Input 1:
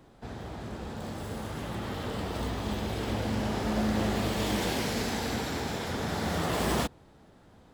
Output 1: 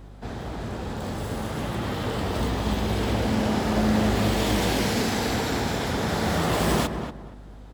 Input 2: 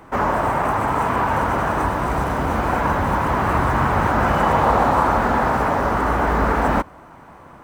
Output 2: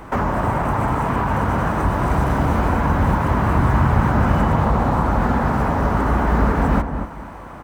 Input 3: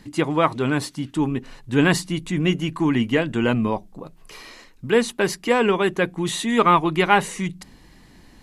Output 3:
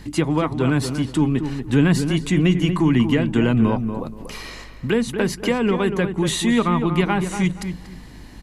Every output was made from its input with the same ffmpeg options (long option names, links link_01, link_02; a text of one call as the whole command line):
ffmpeg -i in.wav -filter_complex "[0:a]acrossover=split=240[link_01][link_02];[link_02]acompressor=threshold=-27dB:ratio=6[link_03];[link_01][link_03]amix=inputs=2:normalize=0,aeval=exprs='val(0)+0.00355*(sin(2*PI*50*n/s)+sin(2*PI*2*50*n/s)/2+sin(2*PI*3*50*n/s)/3+sin(2*PI*4*50*n/s)/4+sin(2*PI*5*50*n/s)/5)':channel_layout=same,asplit=2[link_04][link_05];[link_05]adelay=237,lowpass=frequency=1700:poles=1,volume=-7.5dB,asplit=2[link_06][link_07];[link_07]adelay=237,lowpass=frequency=1700:poles=1,volume=0.25,asplit=2[link_08][link_09];[link_09]adelay=237,lowpass=frequency=1700:poles=1,volume=0.25[link_10];[link_06][link_08][link_10]amix=inputs=3:normalize=0[link_11];[link_04][link_11]amix=inputs=2:normalize=0,volume=6dB" out.wav